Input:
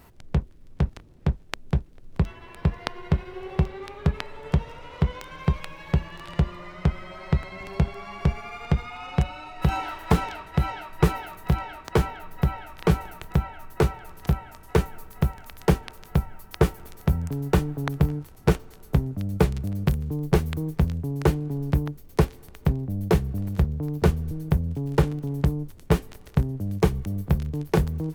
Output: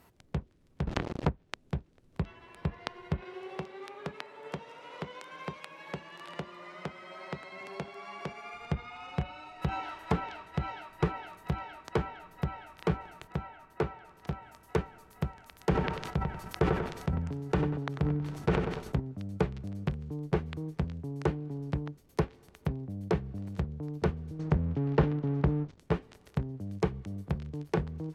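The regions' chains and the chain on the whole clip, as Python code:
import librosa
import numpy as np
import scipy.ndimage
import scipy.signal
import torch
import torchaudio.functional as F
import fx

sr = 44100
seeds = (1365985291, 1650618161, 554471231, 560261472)

y = fx.chain(x, sr, fx.leveller(passes=5),
    fx.env_flatten(amount_pct=50), at=(0.87, 1.29))
y = fx.chain(y, sr, fx.highpass(hz=250.0, slope=12),
    fx.band_squash(depth_pct=40), at=(3.22, 8.54))
y = fx.chain(y, sr, fx.lowpass(hz=3600.0, slope=6),
    fx.low_shelf(hz=150.0, db=-5.0), at=(13.27, 14.42))
y = fx.chain(y, sr, fx.echo_feedback(ms=95, feedback_pct=38, wet_db=-15),
    fx.sustainer(db_per_s=42.0), at=(15.63, 19.0))
y = fx.chain(y, sr, fx.lowpass(hz=6800.0, slope=24),
    fx.leveller(passes=2), at=(24.39, 25.79))
y = fx.highpass(y, sr, hz=120.0, slope=6)
y = fx.env_lowpass_down(y, sr, base_hz=2500.0, full_db=-19.0)
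y = F.gain(torch.from_numpy(y), -7.0).numpy()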